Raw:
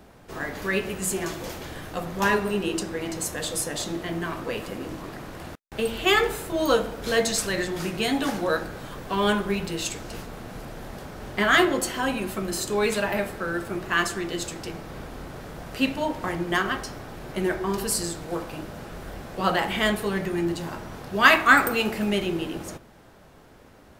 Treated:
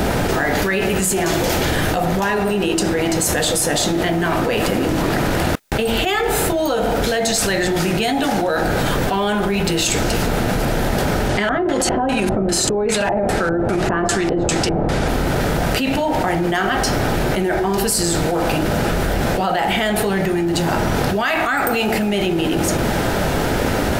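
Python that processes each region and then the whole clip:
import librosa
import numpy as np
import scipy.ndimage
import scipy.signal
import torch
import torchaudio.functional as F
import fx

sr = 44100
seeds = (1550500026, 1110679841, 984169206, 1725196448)

y = fx.chain(x, sr, fx.over_compress(threshold_db=-30.0, ratio=-1.0),
    fx.peak_eq(hz=11000.0, db=4.0, octaves=1.5),
    fx.filter_lfo_lowpass(shape='square', hz=2.5, low_hz=740.0, high_hz=7800.0, q=0.87), at=(11.29, 15.08))
y = fx.notch(y, sr, hz=1100.0, q=8.0)
y = fx.dynamic_eq(y, sr, hz=740.0, q=3.9, threshold_db=-44.0, ratio=4.0, max_db=8)
y = fx.env_flatten(y, sr, amount_pct=100)
y = y * 10.0 ** (-6.5 / 20.0)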